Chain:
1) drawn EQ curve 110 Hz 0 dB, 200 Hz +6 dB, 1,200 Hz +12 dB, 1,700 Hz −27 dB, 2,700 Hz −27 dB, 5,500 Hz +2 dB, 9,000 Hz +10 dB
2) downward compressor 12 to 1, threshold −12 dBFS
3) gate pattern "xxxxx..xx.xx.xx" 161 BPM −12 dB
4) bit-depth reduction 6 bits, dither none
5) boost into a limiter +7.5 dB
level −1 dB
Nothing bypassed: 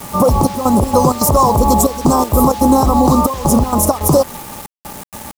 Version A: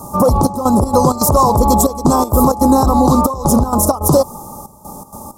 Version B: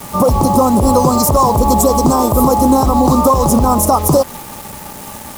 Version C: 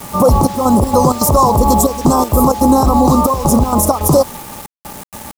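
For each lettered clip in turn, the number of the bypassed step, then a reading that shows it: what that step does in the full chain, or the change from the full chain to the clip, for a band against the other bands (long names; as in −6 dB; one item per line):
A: 4, distortion level −22 dB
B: 3, change in momentary loudness spread −1 LU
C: 2, average gain reduction 2.0 dB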